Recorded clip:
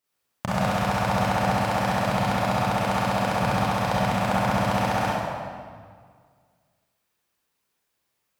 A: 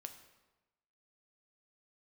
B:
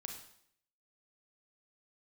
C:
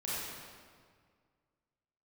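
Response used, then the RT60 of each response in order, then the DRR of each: C; 1.1, 0.65, 1.9 seconds; 6.5, 2.5, −9.0 decibels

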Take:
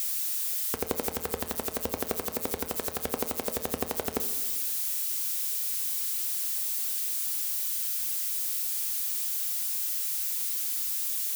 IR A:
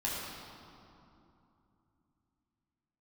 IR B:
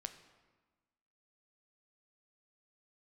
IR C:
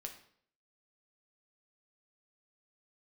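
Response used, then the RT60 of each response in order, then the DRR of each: B; 2.8, 1.3, 0.60 seconds; −6.5, 8.0, 3.0 decibels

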